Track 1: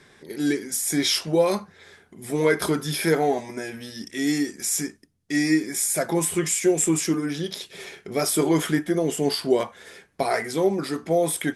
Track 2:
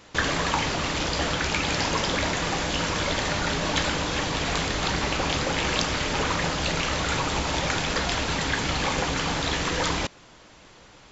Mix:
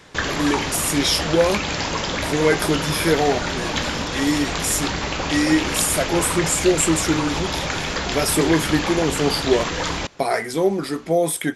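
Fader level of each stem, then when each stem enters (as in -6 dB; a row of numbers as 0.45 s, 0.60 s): +2.5 dB, +1.0 dB; 0.00 s, 0.00 s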